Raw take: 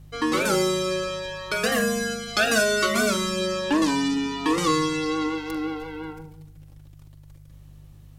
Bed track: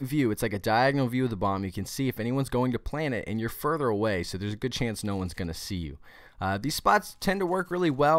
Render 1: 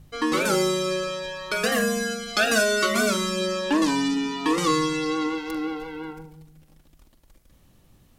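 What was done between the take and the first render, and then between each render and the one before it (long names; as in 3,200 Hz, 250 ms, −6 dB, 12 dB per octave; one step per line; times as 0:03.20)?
hum removal 50 Hz, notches 3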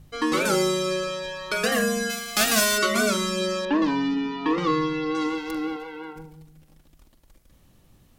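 0:02.09–0:02.77: spectral envelope flattened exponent 0.3
0:03.65–0:05.15: high-frequency loss of the air 250 metres
0:05.76–0:06.16: bass and treble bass −13 dB, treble −4 dB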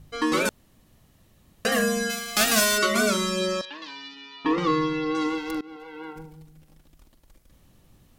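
0:00.49–0:01.65: fill with room tone
0:03.61–0:04.45: resonant band-pass 4,000 Hz, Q 1.3
0:05.61–0:06.09: fade in, from −23.5 dB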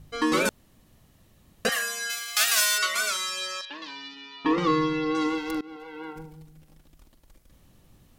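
0:01.69–0:03.70: high-pass filter 1,300 Hz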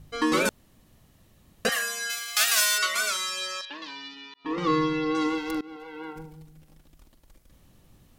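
0:04.34–0:04.74: fade in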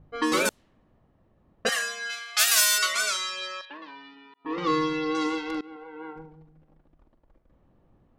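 low-pass that shuts in the quiet parts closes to 1,000 Hz, open at −20.5 dBFS
bass and treble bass −6 dB, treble +3 dB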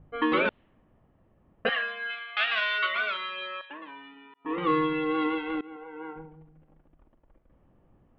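Butterworth low-pass 3,300 Hz 48 dB per octave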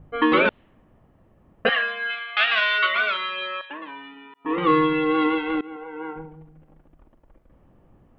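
level +6.5 dB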